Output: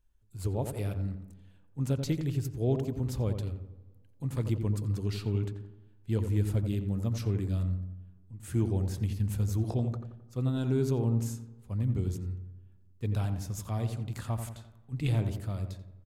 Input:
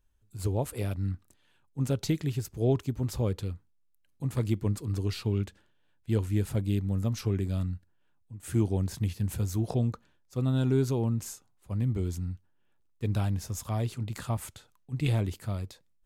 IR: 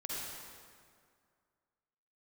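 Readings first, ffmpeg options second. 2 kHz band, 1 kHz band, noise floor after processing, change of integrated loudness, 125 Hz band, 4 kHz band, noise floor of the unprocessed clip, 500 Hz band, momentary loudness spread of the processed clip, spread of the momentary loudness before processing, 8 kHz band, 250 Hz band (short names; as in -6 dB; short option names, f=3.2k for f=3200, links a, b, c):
-3.5 dB, -3.0 dB, -59 dBFS, -1.5 dB, -0.5 dB, -4.0 dB, -67 dBFS, -2.5 dB, 14 LU, 12 LU, -4.0 dB, -2.0 dB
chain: -filter_complex "[0:a]lowshelf=f=83:g=5.5,asplit=2[a][b];[b]adelay=87,lowpass=f=1.3k:p=1,volume=-6.5dB,asplit=2[c][d];[d]adelay=87,lowpass=f=1.3k:p=1,volume=0.53,asplit=2[e][f];[f]adelay=87,lowpass=f=1.3k:p=1,volume=0.53,asplit=2[g][h];[h]adelay=87,lowpass=f=1.3k:p=1,volume=0.53,asplit=2[i][j];[j]adelay=87,lowpass=f=1.3k:p=1,volume=0.53,asplit=2[k][l];[l]adelay=87,lowpass=f=1.3k:p=1,volume=0.53,asplit=2[m][n];[n]adelay=87,lowpass=f=1.3k:p=1,volume=0.53[o];[a][c][e][g][i][k][m][o]amix=inputs=8:normalize=0,asplit=2[p][q];[1:a]atrim=start_sample=2205,asetrate=43218,aresample=44100,lowpass=3.2k[r];[q][r]afir=irnorm=-1:irlink=0,volume=-24dB[s];[p][s]amix=inputs=2:normalize=0,volume=-4dB"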